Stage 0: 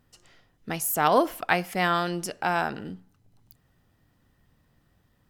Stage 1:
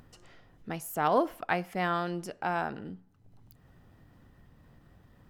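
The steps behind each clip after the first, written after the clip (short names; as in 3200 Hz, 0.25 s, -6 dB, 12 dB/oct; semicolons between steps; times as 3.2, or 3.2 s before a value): high shelf 2600 Hz -10 dB; upward compressor, threshold -41 dBFS; gain -4 dB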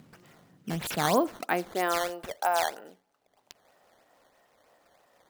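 high shelf 9800 Hz +10 dB; high-pass sweep 170 Hz -> 610 Hz, 1.21–2.16; decimation with a swept rate 10×, swing 160% 3.1 Hz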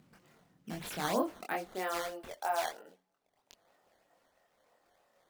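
chorus voices 4, 1 Hz, delay 24 ms, depth 3 ms; gain -4.5 dB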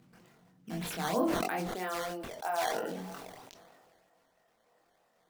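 on a send at -9.5 dB: reverb RT60 0.20 s, pre-delay 3 ms; on the sum: sustainer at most 27 dB/s; gain -1 dB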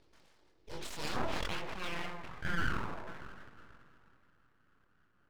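low-pass sweep 4600 Hz -> 850 Hz, 0.91–2.71; tape echo 0.328 s, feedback 55%, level -17 dB, low-pass 5800 Hz; full-wave rectifier; gain -3.5 dB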